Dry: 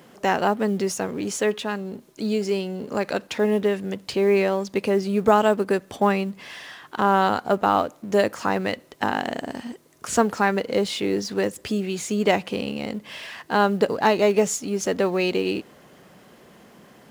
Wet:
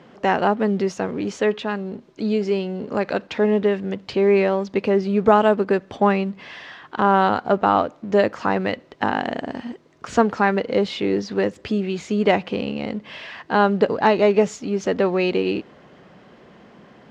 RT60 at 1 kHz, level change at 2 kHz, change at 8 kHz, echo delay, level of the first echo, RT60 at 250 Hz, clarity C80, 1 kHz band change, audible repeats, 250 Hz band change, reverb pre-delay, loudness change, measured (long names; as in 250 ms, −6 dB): no reverb audible, +1.5 dB, below −10 dB, no echo audible, no echo audible, no reverb audible, no reverb audible, +2.5 dB, no echo audible, +3.0 dB, no reverb audible, +2.5 dB